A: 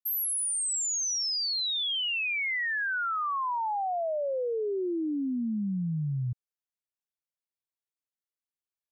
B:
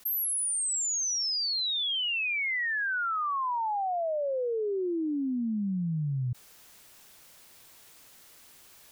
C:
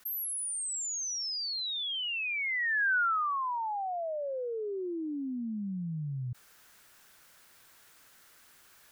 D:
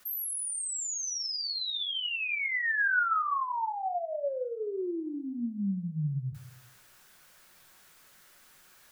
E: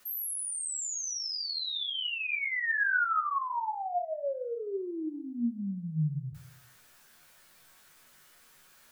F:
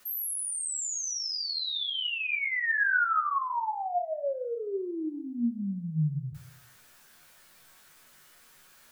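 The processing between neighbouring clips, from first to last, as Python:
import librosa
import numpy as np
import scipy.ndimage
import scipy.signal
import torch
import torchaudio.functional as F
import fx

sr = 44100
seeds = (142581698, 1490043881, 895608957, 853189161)

y1 = fx.env_flatten(x, sr, amount_pct=70)
y2 = fx.peak_eq(y1, sr, hz=1500.0, db=8.5, octaves=0.78)
y2 = y2 * librosa.db_to_amplitude(-5.5)
y3 = fx.room_shoebox(y2, sr, seeds[0], volume_m3=320.0, walls='furnished', distance_m=0.98)
y4 = fx.comb_fb(y3, sr, f0_hz=79.0, decay_s=0.27, harmonics='all', damping=0.0, mix_pct=80)
y4 = y4 * librosa.db_to_amplitude(5.5)
y5 = fx.echo_feedback(y4, sr, ms=105, feedback_pct=48, wet_db=-22.5)
y5 = y5 * librosa.db_to_amplitude(2.0)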